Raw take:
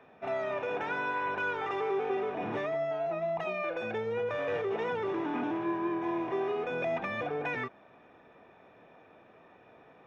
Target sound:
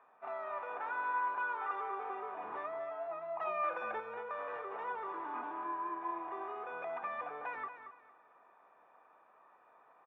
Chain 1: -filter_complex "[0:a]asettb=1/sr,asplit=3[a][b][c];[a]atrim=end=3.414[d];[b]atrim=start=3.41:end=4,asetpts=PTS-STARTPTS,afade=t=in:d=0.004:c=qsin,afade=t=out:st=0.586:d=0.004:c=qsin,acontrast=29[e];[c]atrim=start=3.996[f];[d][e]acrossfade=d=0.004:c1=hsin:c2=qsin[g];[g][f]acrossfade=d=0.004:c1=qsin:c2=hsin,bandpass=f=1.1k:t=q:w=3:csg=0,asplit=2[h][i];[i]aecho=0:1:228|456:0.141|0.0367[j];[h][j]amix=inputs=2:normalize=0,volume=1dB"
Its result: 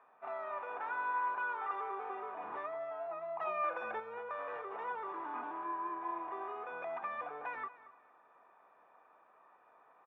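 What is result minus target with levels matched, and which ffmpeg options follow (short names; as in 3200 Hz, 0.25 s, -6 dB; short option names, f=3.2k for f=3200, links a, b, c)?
echo-to-direct -7 dB
-filter_complex "[0:a]asettb=1/sr,asplit=3[a][b][c];[a]atrim=end=3.414[d];[b]atrim=start=3.41:end=4,asetpts=PTS-STARTPTS,afade=t=in:d=0.004:c=qsin,afade=t=out:st=0.586:d=0.004:c=qsin,acontrast=29[e];[c]atrim=start=3.996[f];[d][e]acrossfade=d=0.004:c1=hsin:c2=qsin[g];[g][f]acrossfade=d=0.004:c1=qsin:c2=hsin,bandpass=f=1.1k:t=q:w=3:csg=0,asplit=2[h][i];[i]aecho=0:1:228|456|684:0.316|0.0822|0.0214[j];[h][j]amix=inputs=2:normalize=0,volume=1dB"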